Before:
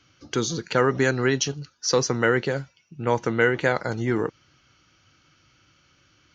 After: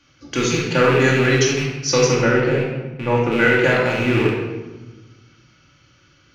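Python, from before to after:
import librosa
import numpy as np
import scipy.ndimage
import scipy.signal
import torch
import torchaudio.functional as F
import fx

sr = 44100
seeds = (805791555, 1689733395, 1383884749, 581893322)

y = fx.rattle_buzz(x, sr, strikes_db=-33.0, level_db=-18.0)
y = fx.high_shelf(y, sr, hz=2300.0, db=-12.0, at=(2.14, 3.32))
y = fx.room_shoebox(y, sr, seeds[0], volume_m3=780.0, walls='mixed', distance_m=2.4)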